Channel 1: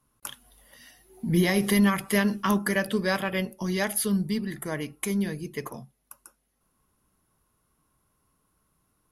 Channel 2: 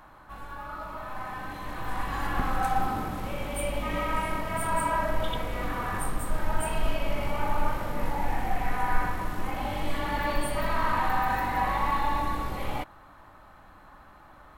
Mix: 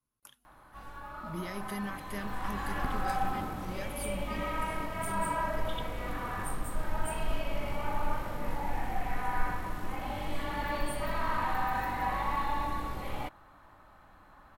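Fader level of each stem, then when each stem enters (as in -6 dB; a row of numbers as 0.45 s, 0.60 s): -17.0 dB, -5.0 dB; 0.00 s, 0.45 s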